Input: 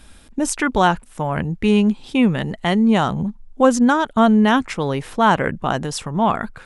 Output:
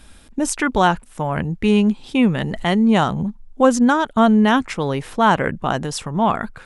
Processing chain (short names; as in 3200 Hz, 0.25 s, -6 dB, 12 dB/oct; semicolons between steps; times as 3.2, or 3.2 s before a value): 2.37–3.04 sustainer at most 29 dB/s